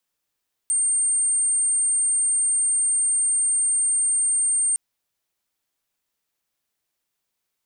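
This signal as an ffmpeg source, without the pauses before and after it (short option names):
-f lavfi -i "sine=f=8710:d=4.06:r=44100,volume=0.06dB"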